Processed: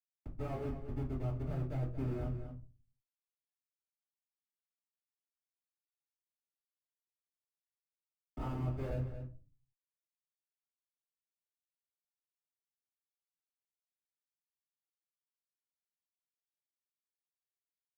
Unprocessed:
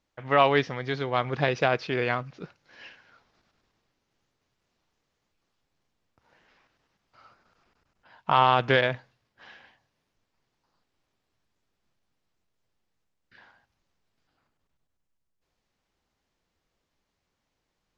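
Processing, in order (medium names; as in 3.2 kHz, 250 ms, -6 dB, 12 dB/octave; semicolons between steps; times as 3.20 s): low-pass 4.5 kHz 24 dB/octave; treble shelf 3.4 kHz +6 dB; Schmitt trigger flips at -27 dBFS; peak limiter -34.5 dBFS, peak gain reduction 8.5 dB; echo from a far wall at 39 m, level -11 dB; reverberation RT60 0.30 s, pre-delay 76 ms; three bands compressed up and down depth 40%; trim +15.5 dB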